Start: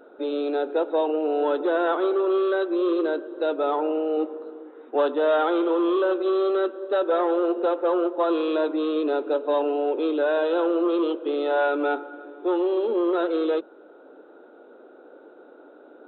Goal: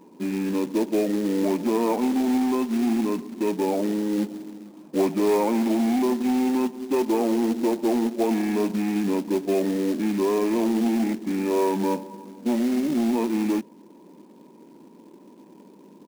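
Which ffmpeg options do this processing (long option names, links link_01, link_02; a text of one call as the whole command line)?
ffmpeg -i in.wav -af "asetrate=29433,aresample=44100,atempo=1.49831,acrusher=bits=4:mode=log:mix=0:aa=0.000001" out.wav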